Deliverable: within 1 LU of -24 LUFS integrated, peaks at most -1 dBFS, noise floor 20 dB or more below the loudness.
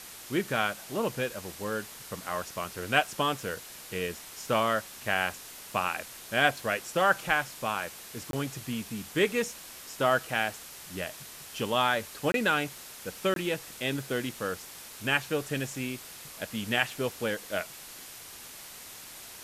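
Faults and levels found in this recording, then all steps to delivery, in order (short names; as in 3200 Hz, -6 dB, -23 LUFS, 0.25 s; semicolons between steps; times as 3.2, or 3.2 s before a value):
dropouts 3; longest dropout 22 ms; noise floor -46 dBFS; noise floor target -51 dBFS; loudness -30.5 LUFS; peak -6.5 dBFS; loudness target -24.0 LUFS
-> interpolate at 8.31/12.32/13.34, 22 ms; denoiser 6 dB, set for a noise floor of -46 dBFS; gain +6.5 dB; limiter -1 dBFS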